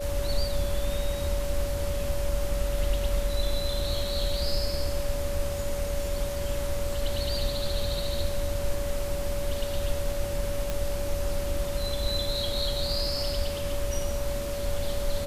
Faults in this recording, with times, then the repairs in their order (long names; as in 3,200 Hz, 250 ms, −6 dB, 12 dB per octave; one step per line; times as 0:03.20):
whistle 570 Hz −32 dBFS
0:10.70: click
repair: click removal
notch filter 570 Hz, Q 30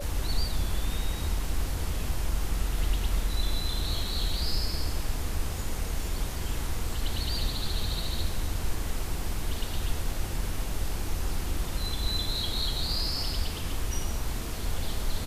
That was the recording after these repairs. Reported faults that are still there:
none of them is left